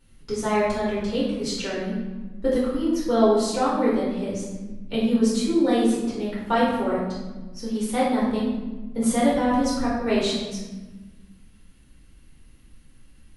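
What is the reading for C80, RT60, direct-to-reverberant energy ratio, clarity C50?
3.5 dB, 1.2 s, -9.0 dB, 0.0 dB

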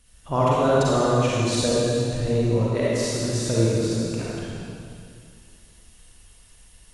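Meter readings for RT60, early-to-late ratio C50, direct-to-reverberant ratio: 2.4 s, -6.5 dB, -8.0 dB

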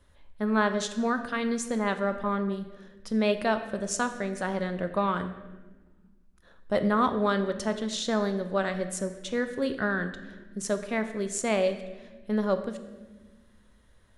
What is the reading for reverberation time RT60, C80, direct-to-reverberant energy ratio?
1.3 s, 12.0 dB, 8.0 dB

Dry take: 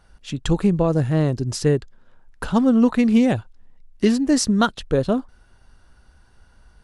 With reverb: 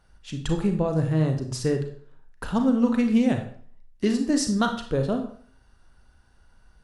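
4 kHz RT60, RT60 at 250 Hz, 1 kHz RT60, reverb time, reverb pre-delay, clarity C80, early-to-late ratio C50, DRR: 0.40 s, 0.55 s, 0.50 s, 0.50 s, 31 ms, 12.5 dB, 8.5 dB, 5.0 dB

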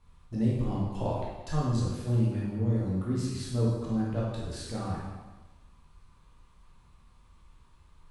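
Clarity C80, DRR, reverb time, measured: 2.5 dB, -6.5 dB, 1.2 s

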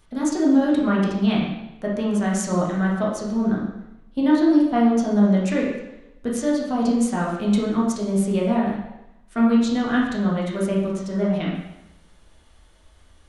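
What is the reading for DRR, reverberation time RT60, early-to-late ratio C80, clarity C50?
-4.5 dB, 0.90 s, 4.5 dB, 2.0 dB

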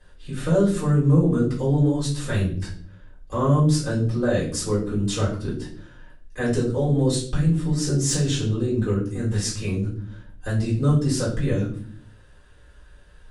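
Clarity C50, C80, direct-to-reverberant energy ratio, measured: 6.5 dB, 11.5 dB, -7.5 dB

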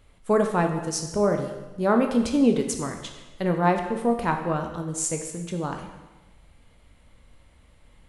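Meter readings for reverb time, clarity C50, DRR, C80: 1.1 s, 6.5 dB, 3.5 dB, 8.5 dB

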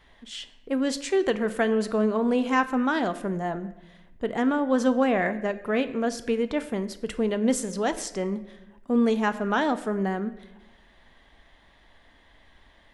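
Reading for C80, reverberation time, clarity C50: 16.0 dB, 0.95 s, 14.0 dB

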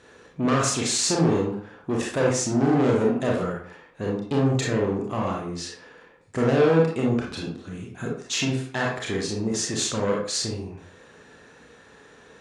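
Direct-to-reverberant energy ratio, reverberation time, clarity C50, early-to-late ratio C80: -2.5 dB, 0.50 s, 2.5 dB, 8.0 dB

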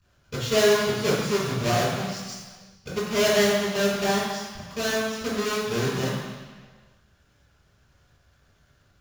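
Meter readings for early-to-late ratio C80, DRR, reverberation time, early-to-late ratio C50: 2.5 dB, -7.5 dB, 1.5 s, 0.0 dB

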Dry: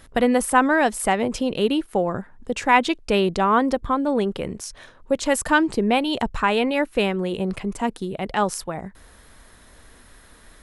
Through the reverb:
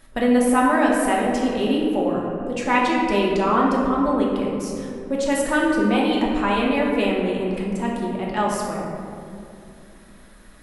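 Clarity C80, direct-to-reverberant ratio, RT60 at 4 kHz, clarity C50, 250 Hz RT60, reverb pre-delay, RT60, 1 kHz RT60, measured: 2.0 dB, -3.5 dB, 1.2 s, 0.5 dB, 3.8 s, 3 ms, 2.6 s, 2.3 s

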